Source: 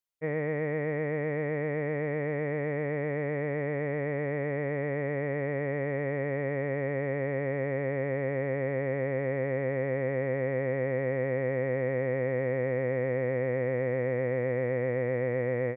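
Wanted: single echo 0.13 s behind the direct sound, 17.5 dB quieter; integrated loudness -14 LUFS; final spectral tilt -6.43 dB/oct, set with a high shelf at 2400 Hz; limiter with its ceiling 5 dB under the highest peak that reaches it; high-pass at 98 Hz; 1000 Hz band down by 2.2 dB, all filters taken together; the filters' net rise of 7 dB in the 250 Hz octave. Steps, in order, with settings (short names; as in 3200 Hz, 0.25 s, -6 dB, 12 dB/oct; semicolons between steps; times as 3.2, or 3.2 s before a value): HPF 98 Hz; bell 250 Hz +9 dB; bell 1000 Hz -3.5 dB; high shelf 2400 Hz -4.5 dB; limiter -22 dBFS; echo 0.13 s -17.5 dB; gain +17.5 dB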